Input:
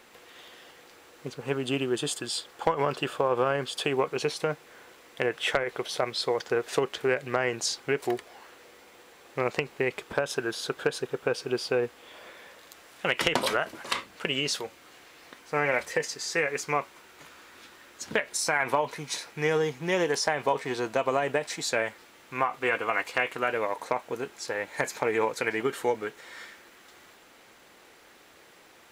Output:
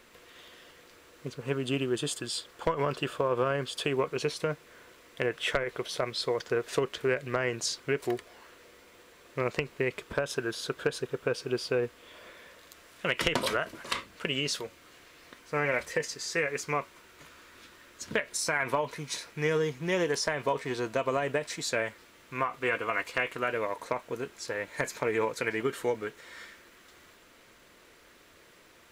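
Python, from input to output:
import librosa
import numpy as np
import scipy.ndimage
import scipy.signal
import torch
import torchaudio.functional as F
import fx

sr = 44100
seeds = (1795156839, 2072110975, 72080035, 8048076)

y = fx.low_shelf(x, sr, hz=96.0, db=11.0)
y = fx.notch(y, sr, hz=800.0, q=5.2)
y = y * librosa.db_to_amplitude(-2.5)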